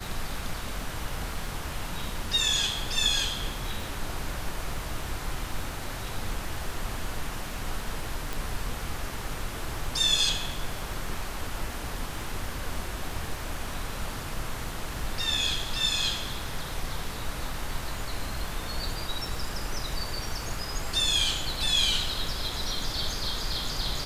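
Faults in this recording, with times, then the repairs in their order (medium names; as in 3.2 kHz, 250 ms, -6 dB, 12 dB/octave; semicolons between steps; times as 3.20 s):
crackle 40 per s -37 dBFS
8.33 s: pop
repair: de-click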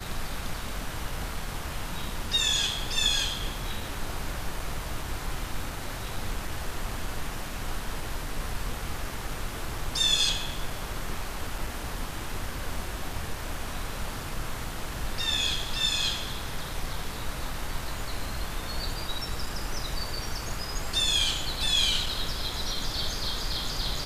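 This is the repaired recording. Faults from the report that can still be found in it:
nothing left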